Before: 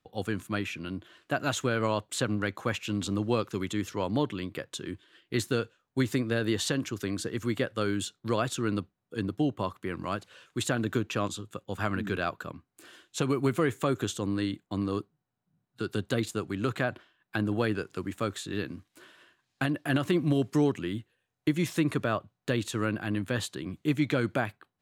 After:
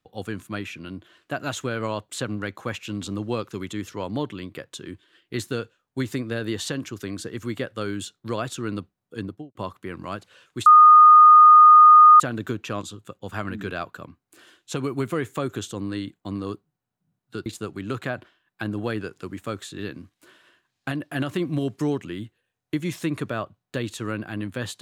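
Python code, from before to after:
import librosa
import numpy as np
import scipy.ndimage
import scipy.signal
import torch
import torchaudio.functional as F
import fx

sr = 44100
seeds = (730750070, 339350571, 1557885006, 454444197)

y = fx.studio_fade_out(x, sr, start_s=9.19, length_s=0.36)
y = fx.edit(y, sr, fx.insert_tone(at_s=10.66, length_s=1.54, hz=1230.0, db=-7.0),
    fx.cut(start_s=15.92, length_s=0.28), tone=tone)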